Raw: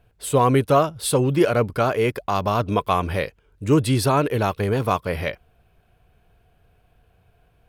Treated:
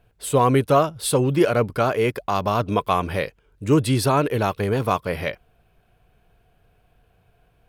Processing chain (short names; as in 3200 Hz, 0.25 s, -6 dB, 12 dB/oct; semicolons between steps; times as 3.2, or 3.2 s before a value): bell 75 Hz -6.5 dB 0.47 oct